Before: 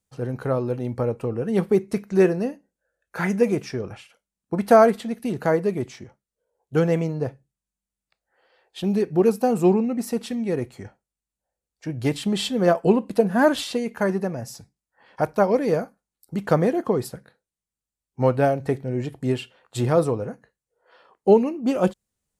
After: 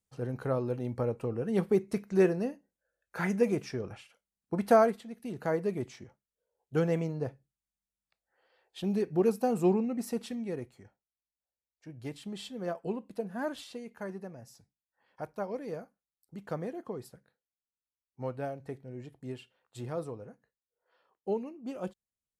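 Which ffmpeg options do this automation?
-af "volume=1dB,afade=t=out:st=4.69:d=0.37:silence=0.354813,afade=t=in:st=5.06:d=0.66:silence=0.398107,afade=t=out:st=10.19:d=0.65:silence=0.354813"

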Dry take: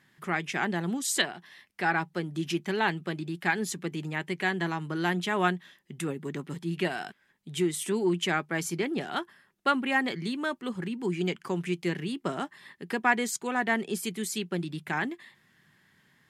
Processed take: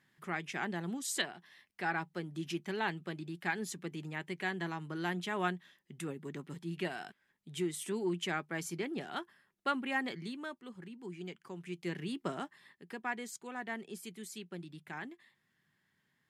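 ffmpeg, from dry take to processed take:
-af "volume=2dB,afade=t=out:st=10.09:d=0.58:silence=0.446684,afade=t=in:st=11.61:d=0.55:silence=0.316228,afade=t=out:st=12.16:d=0.68:silence=0.375837"

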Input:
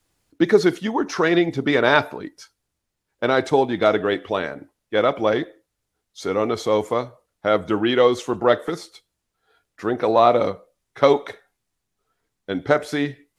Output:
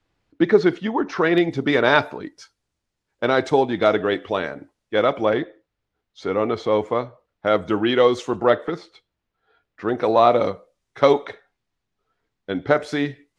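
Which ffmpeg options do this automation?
-af "asetnsamples=n=441:p=0,asendcmd='1.38 lowpass f 7400;5.25 lowpass f 3400;7.47 lowpass f 7100;8.5 lowpass f 3200;9.89 lowpass f 7600;11.25 lowpass f 4400;12.76 lowpass f 6900',lowpass=3.4k"

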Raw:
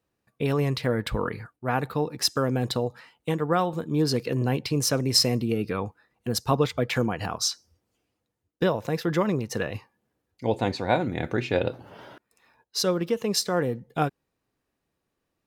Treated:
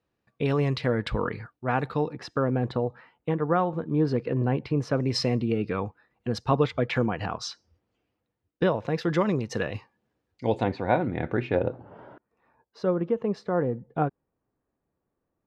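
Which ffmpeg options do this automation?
-af "asetnsamples=n=441:p=0,asendcmd='2.13 lowpass f 1800;5 lowpass f 3200;8.98 lowpass f 5300;10.63 lowpass f 2100;11.55 lowpass f 1200',lowpass=4.6k"

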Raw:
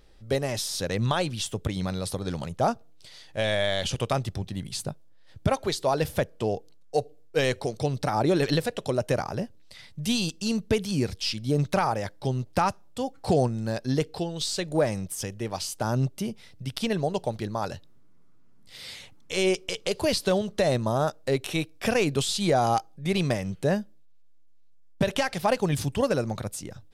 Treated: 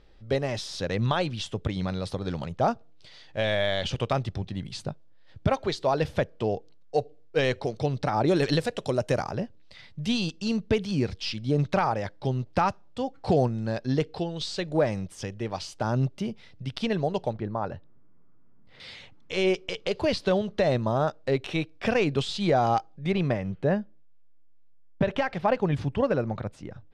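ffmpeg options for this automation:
-af "asetnsamples=n=441:p=0,asendcmd='8.28 lowpass f 7900;9.31 lowpass f 4200;17.33 lowpass f 1600;18.8 lowpass f 3700;23.12 lowpass f 2300',lowpass=4.3k"

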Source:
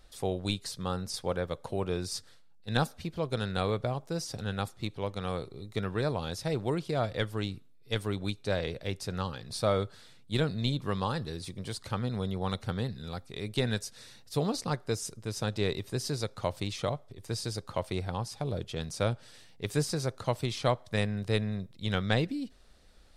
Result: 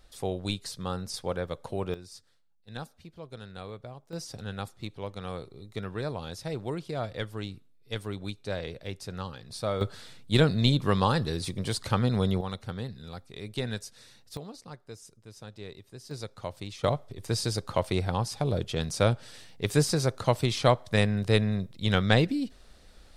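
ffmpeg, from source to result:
-af "asetnsamples=n=441:p=0,asendcmd='1.94 volume volume -11.5dB;4.13 volume volume -3dB;9.81 volume volume 7dB;12.41 volume volume -3dB;14.37 volume volume -13dB;16.11 volume volume -5dB;16.84 volume volume 5.5dB',volume=0dB"

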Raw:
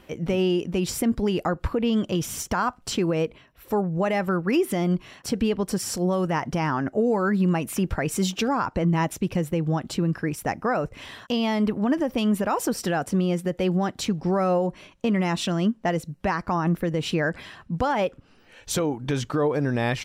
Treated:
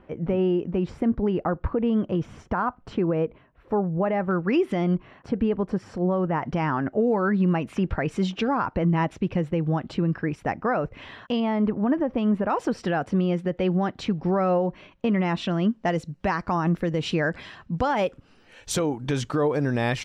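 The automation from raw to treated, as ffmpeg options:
-af "asetnsamples=n=441:p=0,asendcmd='4.31 lowpass f 3100;4.96 lowpass f 1600;6.42 lowpass f 2900;11.4 lowpass f 1700;12.5 lowpass f 3100;15.71 lowpass f 6000;17.97 lowpass f 11000',lowpass=1.5k"

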